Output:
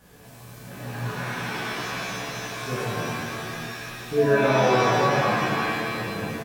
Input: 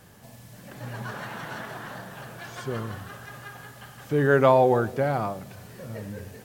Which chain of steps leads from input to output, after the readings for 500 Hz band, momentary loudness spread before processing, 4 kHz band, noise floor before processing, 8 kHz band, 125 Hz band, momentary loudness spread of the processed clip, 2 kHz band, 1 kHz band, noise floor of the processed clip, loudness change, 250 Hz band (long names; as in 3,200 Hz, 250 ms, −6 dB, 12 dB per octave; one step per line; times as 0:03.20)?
+0.5 dB, 23 LU, +12.0 dB, −49 dBFS, +10.5 dB, +1.5 dB, 15 LU, +6.5 dB, +3.0 dB, −46 dBFS, +0.5 dB, +2.5 dB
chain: downward compressor 2 to 1, threshold −25 dBFS, peak gain reduction 7 dB
double-tracking delay 16 ms −5 dB
reverb with rising layers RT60 2 s, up +7 semitones, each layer −2 dB, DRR −7 dB
level −5.5 dB